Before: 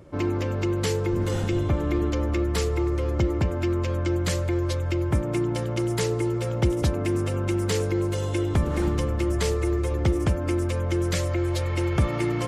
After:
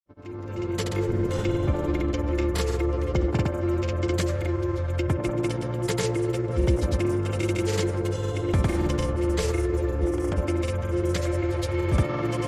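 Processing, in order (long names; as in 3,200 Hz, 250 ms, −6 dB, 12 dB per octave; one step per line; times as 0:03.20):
fade in at the beginning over 1.00 s
delay with a band-pass on its return 84 ms, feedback 69%, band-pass 910 Hz, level −6.5 dB
granular cloud, pitch spread up and down by 0 semitones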